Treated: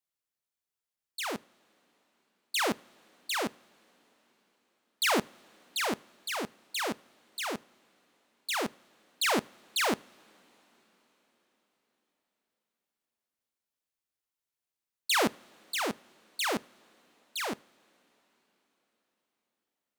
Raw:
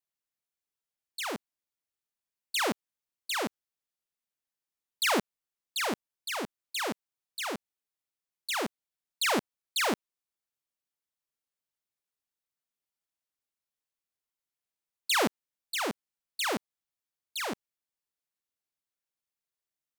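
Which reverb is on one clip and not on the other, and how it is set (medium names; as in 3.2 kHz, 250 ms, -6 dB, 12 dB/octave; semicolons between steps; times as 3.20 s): two-slope reverb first 0.39 s, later 5 s, from -18 dB, DRR 19.5 dB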